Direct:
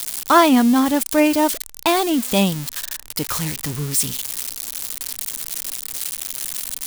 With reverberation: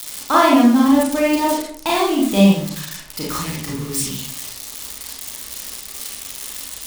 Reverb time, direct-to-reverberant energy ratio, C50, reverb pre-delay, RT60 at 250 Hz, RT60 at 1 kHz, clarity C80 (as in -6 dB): 0.60 s, -4.5 dB, 2.0 dB, 30 ms, 0.80 s, 0.50 s, 6.5 dB